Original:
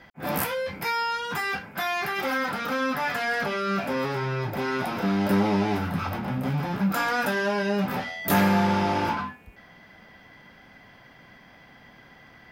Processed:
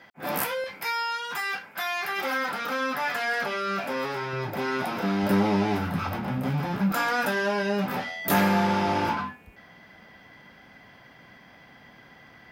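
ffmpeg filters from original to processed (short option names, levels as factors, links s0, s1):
-af "asetnsamples=n=441:p=0,asendcmd='0.64 highpass f 890;2.09 highpass f 400;4.33 highpass f 160;5.23 highpass f 48;6.92 highpass f 150;8.88 highpass f 62',highpass=f=300:p=1"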